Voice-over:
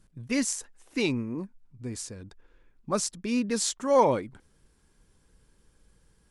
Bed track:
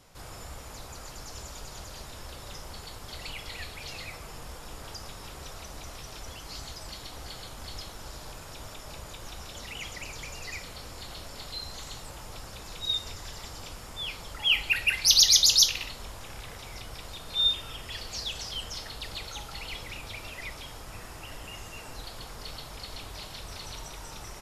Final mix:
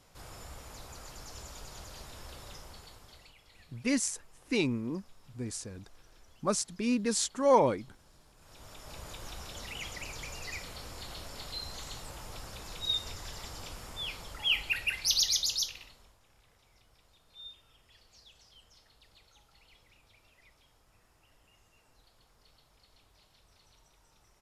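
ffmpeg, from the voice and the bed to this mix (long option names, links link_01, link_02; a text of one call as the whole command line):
ffmpeg -i stem1.wav -i stem2.wav -filter_complex "[0:a]adelay=3550,volume=-2dB[link_01];[1:a]volume=14dB,afade=type=out:start_time=2.39:duration=0.95:silence=0.158489,afade=type=in:start_time=8.36:duration=0.74:silence=0.11885,afade=type=out:start_time=13.87:duration=2.31:silence=0.0841395[link_02];[link_01][link_02]amix=inputs=2:normalize=0" out.wav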